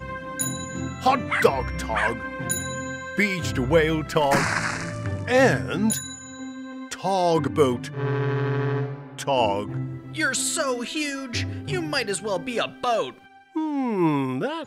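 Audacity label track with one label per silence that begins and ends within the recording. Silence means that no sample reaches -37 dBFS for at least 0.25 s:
13.180000	13.560000	silence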